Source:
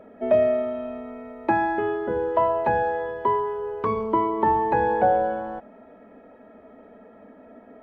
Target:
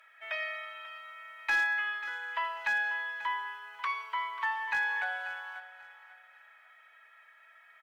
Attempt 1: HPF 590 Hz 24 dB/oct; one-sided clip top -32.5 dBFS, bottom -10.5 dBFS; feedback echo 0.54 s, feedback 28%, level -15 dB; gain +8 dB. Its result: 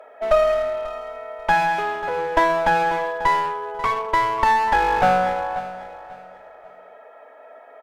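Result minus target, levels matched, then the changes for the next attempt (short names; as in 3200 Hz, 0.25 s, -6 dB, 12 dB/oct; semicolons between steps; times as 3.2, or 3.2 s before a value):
500 Hz band +17.0 dB
change: HPF 1700 Hz 24 dB/oct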